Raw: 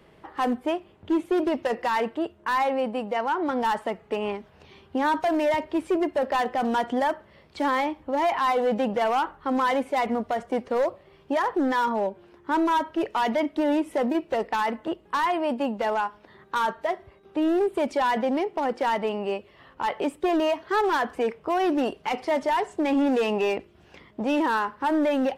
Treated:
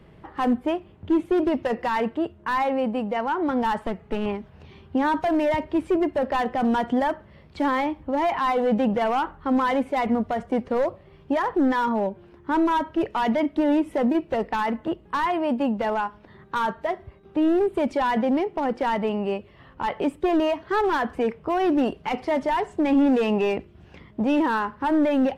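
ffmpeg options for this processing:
-filter_complex "[0:a]asettb=1/sr,asplit=3[s0][s1][s2];[s0]atrim=end=3.864[s3];[s1]atrim=start=3.86:end=4.26,asetpts=PTS-STARTPTS,afade=t=in:d=0.004:c=qsin,afade=t=out:st=0.396:d=0.004:c=qsin,aeval=exprs='clip(val(0),-1,0.0266)':c=same[s4];[s2]atrim=start=4.256[s5];[s3][s4]acrossfade=d=0.004:c1=hsin:c2=qsin[s6];[s6][s5]acrossfade=d=0.004:c1=qsin:c2=hsin,bass=f=250:g=10,treble=f=4000:g=-5"

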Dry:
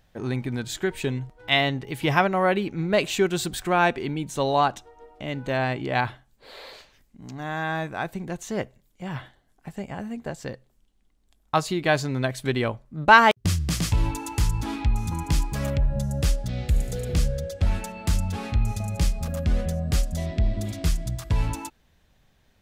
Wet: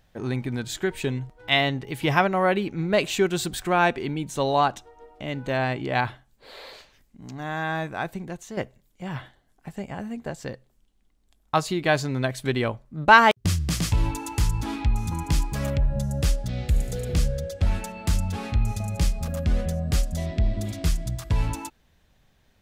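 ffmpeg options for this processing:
-filter_complex "[0:a]asplit=2[s0][s1];[s0]atrim=end=8.57,asetpts=PTS-STARTPTS,afade=t=out:st=8.09:d=0.48:silence=0.398107[s2];[s1]atrim=start=8.57,asetpts=PTS-STARTPTS,afade=t=in:d=0.004:c=hsin:silence=0.398107[s3];[s2][s3]concat=n=2:v=0:a=1"

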